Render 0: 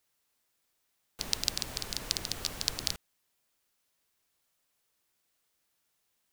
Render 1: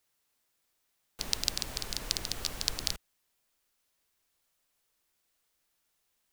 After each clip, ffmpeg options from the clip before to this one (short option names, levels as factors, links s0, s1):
-af "asubboost=boost=2:cutoff=69"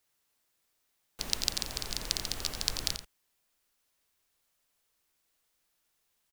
-af "aecho=1:1:87:0.316"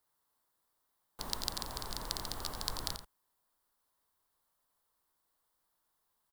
-af "equalizer=f=1000:t=o:w=0.67:g=9,equalizer=f=2500:t=o:w=0.67:g=-11,equalizer=f=6300:t=o:w=0.67:g=-7,volume=0.75"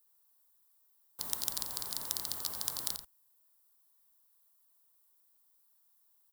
-af "afftfilt=real='re*lt(hypot(re,im),0.0447)':imag='im*lt(hypot(re,im),0.0447)':win_size=1024:overlap=0.75,aemphasis=mode=production:type=75kf,volume=0.501"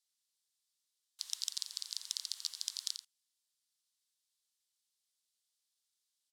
-af "asuperpass=centerf=4400:order=4:qfactor=0.96,volume=1.19"